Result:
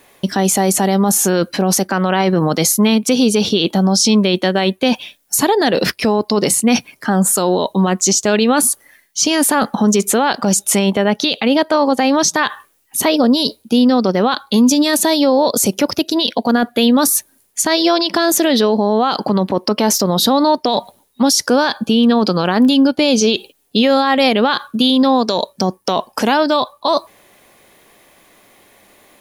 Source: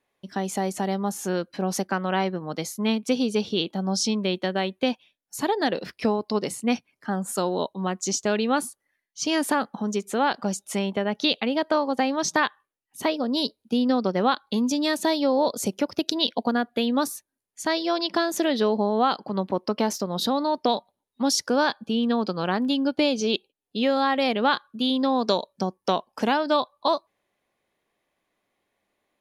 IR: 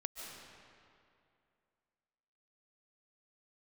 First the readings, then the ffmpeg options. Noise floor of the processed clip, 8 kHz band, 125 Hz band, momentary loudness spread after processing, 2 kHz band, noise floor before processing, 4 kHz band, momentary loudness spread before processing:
-56 dBFS, +16.5 dB, +12.5 dB, 6 LU, +8.5 dB, -82 dBFS, +10.5 dB, 6 LU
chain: -af "highshelf=f=7.4k:g=10.5,areverse,acompressor=threshold=-32dB:ratio=6,areverse,alimiter=level_in=30dB:limit=-1dB:release=50:level=0:latency=1,volume=-4dB"

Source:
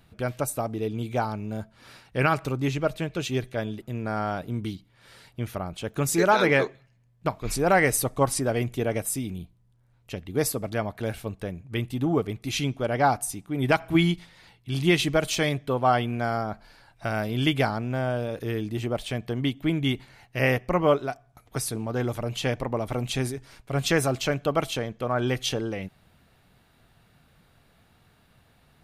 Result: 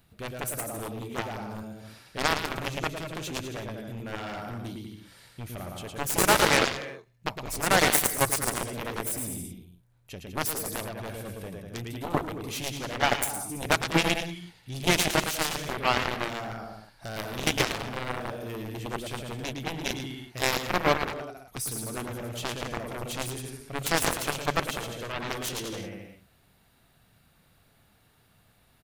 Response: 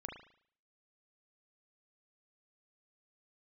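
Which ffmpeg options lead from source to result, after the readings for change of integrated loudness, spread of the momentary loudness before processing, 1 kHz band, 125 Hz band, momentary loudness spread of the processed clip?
-2.5 dB, 12 LU, -2.0 dB, -7.5 dB, 16 LU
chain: -af "aecho=1:1:110|198|268.4|324.7|369.8:0.631|0.398|0.251|0.158|0.1,aeval=exprs='0.501*(cos(1*acos(clip(val(0)/0.501,-1,1)))-cos(1*PI/2))+0.126*(cos(7*acos(clip(val(0)/0.501,-1,1)))-cos(7*PI/2))':c=same,crystalizer=i=1:c=0,volume=-3dB"

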